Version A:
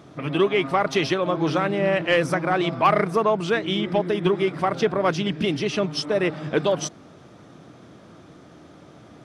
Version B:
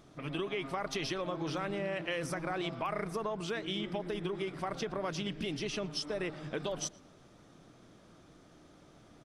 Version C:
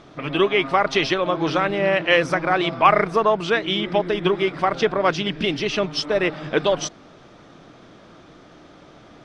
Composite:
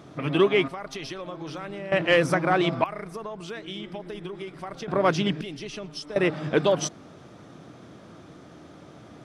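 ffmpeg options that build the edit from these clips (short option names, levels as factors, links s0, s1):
-filter_complex "[1:a]asplit=3[s0][s1][s2];[0:a]asplit=4[s3][s4][s5][s6];[s3]atrim=end=0.682[s7];[s0]atrim=start=0.678:end=1.922[s8];[s4]atrim=start=1.918:end=2.842[s9];[s1]atrim=start=2.838:end=4.882[s10];[s5]atrim=start=4.878:end=5.412[s11];[s2]atrim=start=5.408:end=6.162[s12];[s6]atrim=start=6.158[s13];[s7][s8]acrossfade=d=0.004:c1=hsin:c2=hsin[s14];[s14][s9]acrossfade=d=0.004:c1=hsin:c2=hsin[s15];[s15][s10]acrossfade=d=0.004:c1=hsin:c2=hsin[s16];[s16][s11]acrossfade=d=0.004:c1=hsin:c2=hsin[s17];[s17][s12]acrossfade=d=0.004:c1=hsin:c2=hsin[s18];[s18][s13]acrossfade=d=0.004:c1=hsin:c2=hsin"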